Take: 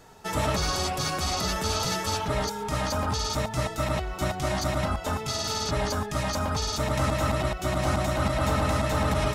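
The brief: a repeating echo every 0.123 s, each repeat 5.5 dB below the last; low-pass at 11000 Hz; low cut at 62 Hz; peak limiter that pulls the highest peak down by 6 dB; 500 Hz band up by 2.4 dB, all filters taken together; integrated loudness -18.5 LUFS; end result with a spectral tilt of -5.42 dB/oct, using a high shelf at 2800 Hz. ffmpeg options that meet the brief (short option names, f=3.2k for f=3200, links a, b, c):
-af "highpass=62,lowpass=11k,equalizer=f=500:t=o:g=3.5,highshelf=f=2.8k:g=-7,alimiter=limit=-19dB:level=0:latency=1,aecho=1:1:123|246|369|492|615|738|861:0.531|0.281|0.149|0.079|0.0419|0.0222|0.0118,volume=9dB"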